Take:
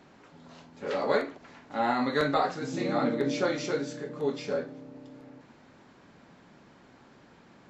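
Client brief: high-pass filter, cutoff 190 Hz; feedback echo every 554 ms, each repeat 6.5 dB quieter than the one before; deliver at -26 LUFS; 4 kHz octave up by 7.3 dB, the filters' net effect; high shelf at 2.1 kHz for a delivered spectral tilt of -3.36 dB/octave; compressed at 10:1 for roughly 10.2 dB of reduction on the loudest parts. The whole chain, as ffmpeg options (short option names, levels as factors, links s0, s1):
-af "highpass=190,highshelf=f=2100:g=3.5,equalizer=f=4000:t=o:g=5,acompressor=threshold=0.0282:ratio=10,aecho=1:1:554|1108|1662|2216|2770|3324:0.473|0.222|0.105|0.0491|0.0231|0.0109,volume=3.16"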